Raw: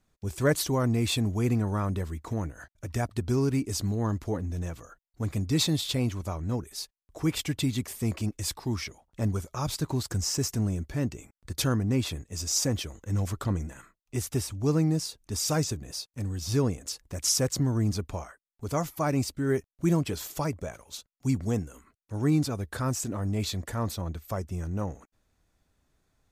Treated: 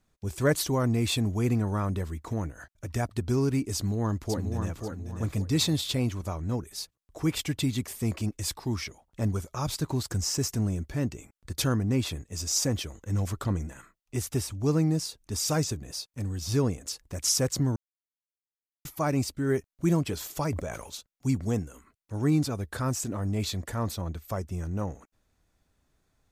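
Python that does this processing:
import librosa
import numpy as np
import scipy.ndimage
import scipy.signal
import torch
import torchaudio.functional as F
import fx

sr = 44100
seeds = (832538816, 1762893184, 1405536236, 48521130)

y = fx.echo_throw(x, sr, start_s=3.75, length_s=1.06, ms=540, feedback_pct=30, wet_db=-5.5)
y = fx.sustainer(y, sr, db_per_s=60.0, at=(20.4, 20.96))
y = fx.edit(y, sr, fx.silence(start_s=17.76, length_s=1.09), tone=tone)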